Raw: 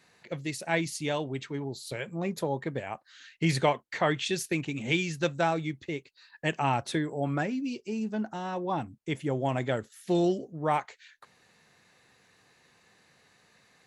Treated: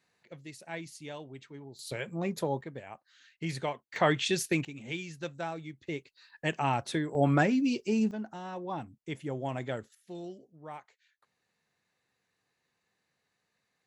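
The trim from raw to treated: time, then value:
-12 dB
from 1.79 s -1 dB
from 2.61 s -9 dB
from 3.96 s +1 dB
from 4.65 s -10 dB
from 5.87 s -2 dB
from 7.15 s +5 dB
from 8.11 s -6 dB
from 9.95 s -17 dB

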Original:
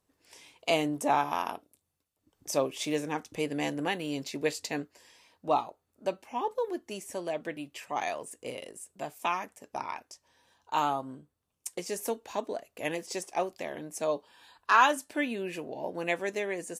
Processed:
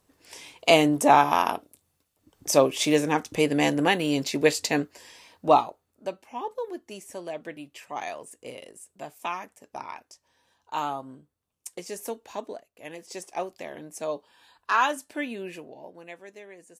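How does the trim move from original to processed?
5.50 s +9 dB
6.11 s -1.5 dB
12.51 s -1.5 dB
12.70 s -11.5 dB
13.25 s -1 dB
15.48 s -1 dB
16.07 s -13 dB

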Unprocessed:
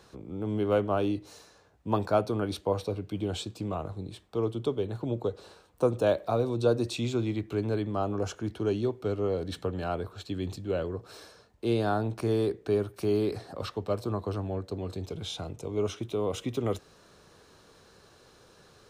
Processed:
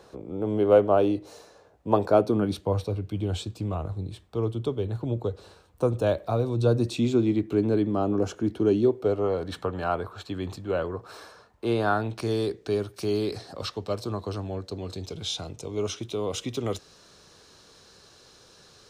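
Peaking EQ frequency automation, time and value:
peaking EQ +9 dB 1.6 oct
2.01 s 550 Hz
2.86 s 76 Hz
6.50 s 76 Hz
7.08 s 280 Hz
8.80 s 280 Hz
9.34 s 1.1 kHz
11.83 s 1.1 kHz
12.27 s 5.2 kHz

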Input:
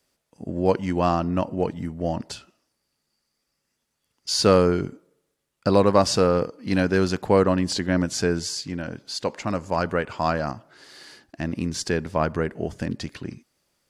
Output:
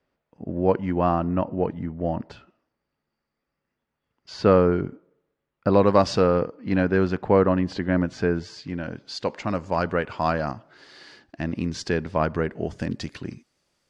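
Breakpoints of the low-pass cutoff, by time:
5.67 s 2 kHz
5.92 s 4.8 kHz
6.55 s 2.3 kHz
8.46 s 2.3 kHz
9.04 s 4.6 kHz
12.53 s 4.6 kHz
12.93 s 8 kHz

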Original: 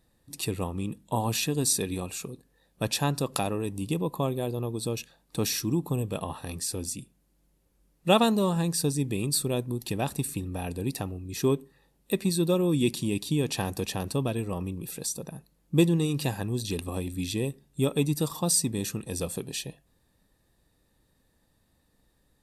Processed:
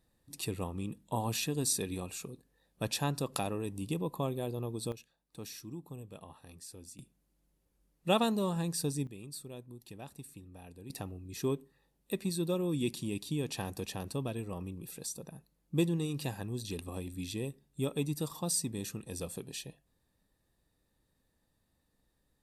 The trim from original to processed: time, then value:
-6 dB
from 4.92 s -17 dB
from 6.99 s -7 dB
from 9.07 s -18 dB
from 10.90 s -8 dB

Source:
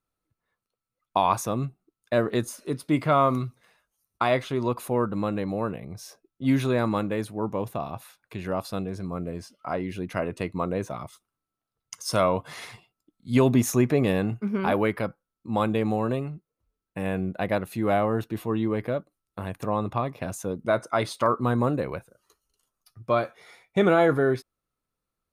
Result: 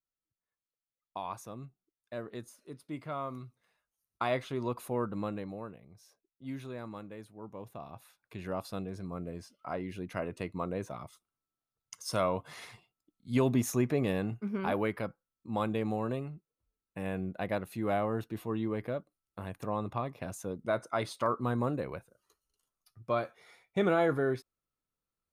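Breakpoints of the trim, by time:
3.32 s -17 dB
4.25 s -8 dB
5.26 s -8 dB
5.84 s -18 dB
7.37 s -18 dB
8.41 s -7.5 dB

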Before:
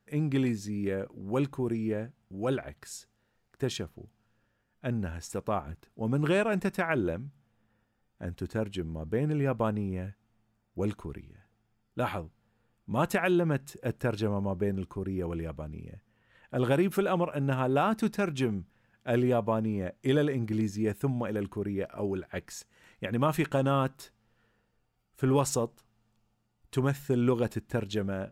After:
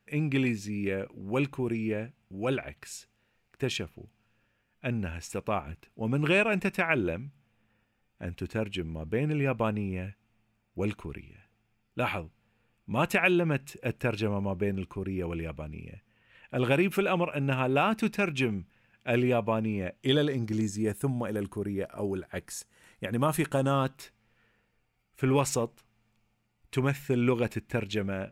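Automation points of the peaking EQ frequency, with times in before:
peaking EQ +11.5 dB 0.55 oct
19.92 s 2.5 kHz
20.88 s 10 kHz
23.60 s 10 kHz
24.00 s 2.3 kHz

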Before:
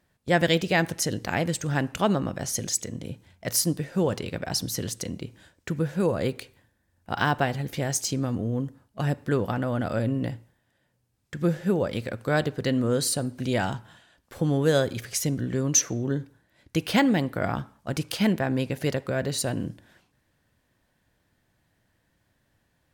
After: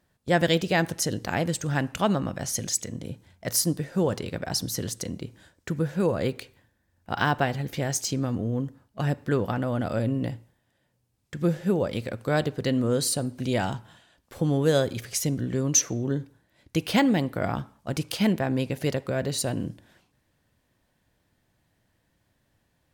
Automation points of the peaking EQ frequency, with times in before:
peaking EQ -3 dB 0.64 oct
2.2 kHz
from 1.69 s 390 Hz
from 2.92 s 2.6 kHz
from 5.90 s 10 kHz
from 9.59 s 1.6 kHz

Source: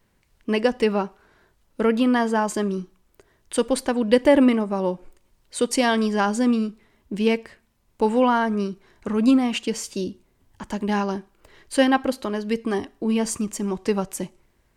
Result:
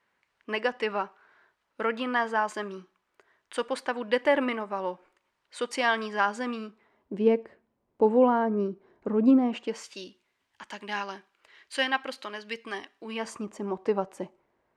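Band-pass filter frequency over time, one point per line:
band-pass filter, Q 0.89
6.59 s 1.5 kHz
7.28 s 440 Hz
9.48 s 440 Hz
9.99 s 2.4 kHz
13.04 s 2.4 kHz
13.47 s 710 Hz

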